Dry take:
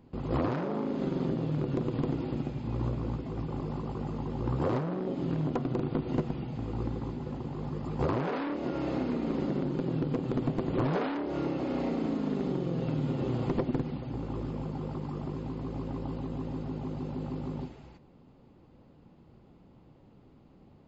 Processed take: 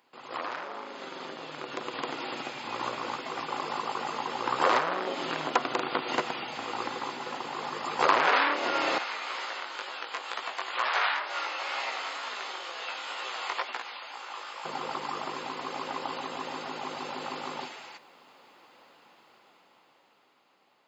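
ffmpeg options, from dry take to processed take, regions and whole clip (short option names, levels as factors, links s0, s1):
-filter_complex "[0:a]asettb=1/sr,asplit=3[s0][s1][s2];[s0]atrim=end=8.984[s3];[s1]atrim=start=8.98:end=14.65,asetpts=PTS-STARTPTS,afade=t=in:d=0.004:c=qsin,afade=t=out:st=5.666:d=0.004:c=qsin,highpass=850,flanger=delay=15.5:depth=5.7:speed=2.1[s4];[s2]atrim=start=14.646[s5];[s3][s4]acrossfade=d=0.004:c1=hsin:c2=qsin[s6];[s6][s5]acrossfade=d=0.004:c1=qsin:c2=hsin,highpass=1200,dynaudnorm=f=370:g=11:m=3.98,volume=2.11"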